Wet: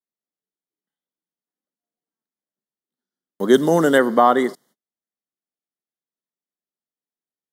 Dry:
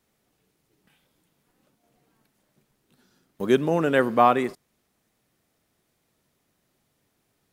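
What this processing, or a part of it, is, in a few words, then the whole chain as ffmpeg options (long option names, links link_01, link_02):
PA system with an anti-feedback notch: -filter_complex "[0:a]highpass=frequency=180:width=0.5412,highpass=frequency=180:width=1.3066,asuperstop=centerf=2500:order=8:qfactor=3.2,alimiter=limit=-8.5dB:level=0:latency=1:release=111,agate=range=-34dB:threshold=-57dB:ratio=16:detection=peak,asplit=3[link_01][link_02][link_03];[link_01]afade=type=out:start_time=3.53:duration=0.02[link_04];[link_02]bass=frequency=250:gain=3,treble=frequency=4000:gain=10,afade=type=in:start_time=3.53:duration=0.02,afade=type=out:start_time=3.97:duration=0.02[link_05];[link_03]afade=type=in:start_time=3.97:duration=0.02[link_06];[link_04][link_05][link_06]amix=inputs=3:normalize=0,volume=6.5dB"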